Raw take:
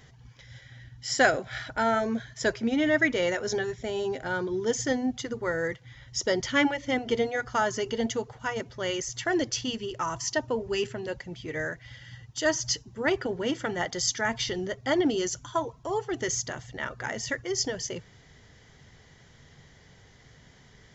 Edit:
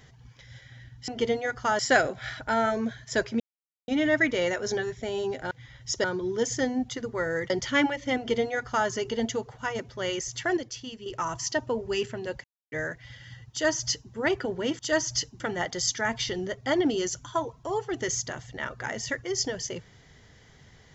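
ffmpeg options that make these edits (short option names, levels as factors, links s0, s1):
-filter_complex "[0:a]asplit=13[s0][s1][s2][s3][s4][s5][s6][s7][s8][s9][s10][s11][s12];[s0]atrim=end=1.082[s13];[s1]atrim=start=6.978:end=7.692[s14];[s2]atrim=start=1.078:end=2.69,asetpts=PTS-STARTPTS,afade=t=out:st=1.608:d=0.004:c=hsin,apad=pad_dur=0.48[s15];[s3]atrim=start=2.69:end=4.322,asetpts=PTS-STARTPTS,afade=t=in:d=0.004:c=hsin[s16];[s4]atrim=start=5.778:end=6.312[s17];[s5]atrim=start=4.318:end=5.782[s18];[s6]atrim=start=6.308:end=9.382[s19];[s7]atrim=start=9.378:end=9.872,asetpts=PTS-STARTPTS,volume=0.398[s20];[s8]atrim=start=9.868:end=11.25,asetpts=PTS-STARTPTS,afade=t=out:st=1.378:d=0.004:c=hsin[s21];[s9]atrim=start=11.25:end=11.53,asetpts=PTS-STARTPTS,volume=0[s22];[s10]atrim=start=11.53:end=13.602,asetpts=PTS-STARTPTS,afade=t=in:d=0.004:c=hsin[s23];[s11]atrim=start=12.318:end=12.932[s24];[s12]atrim=start=13.598[s25];[s13][s14]acrossfade=d=0.004:c1=hsin:c2=hsin[s26];[s15][s16]concat=n=2:v=0:a=1[s27];[s26][s27]acrossfade=d=0.004:c1=hsin:c2=hsin[s28];[s28][s17]acrossfade=d=0.004:c1=hsin:c2=hsin[s29];[s29][s18]acrossfade=d=0.004:c1=hsin:c2=hsin[s30];[s30][s19]acrossfade=d=0.004:c1=hsin:c2=hsin[s31];[s31][s20]acrossfade=d=0.004:c1=hsin:c2=hsin[s32];[s21][s22][s23]concat=n=3:v=0:a=1[s33];[s32][s33]acrossfade=d=0.004:c1=hsin:c2=hsin[s34];[s34][s24]acrossfade=d=0.004:c1=hsin:c2=hsin[s35];[s35][s25]acrossfade=d=0.004:c1=hsin:c2=hsin"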